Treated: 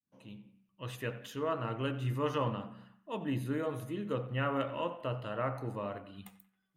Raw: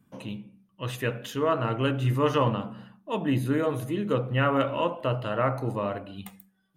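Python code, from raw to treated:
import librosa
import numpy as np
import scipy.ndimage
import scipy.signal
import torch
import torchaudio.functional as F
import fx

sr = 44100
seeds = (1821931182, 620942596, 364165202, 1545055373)

y = fx.fade_in_head(x, sr, length_s=0.51)
y = fx.echo_banded(y, sr, ms=90, feedback_pct=55, hz=1700.0, wet_db=-15.0)
y = y * 10.0 ** (-9.0 / 20.0)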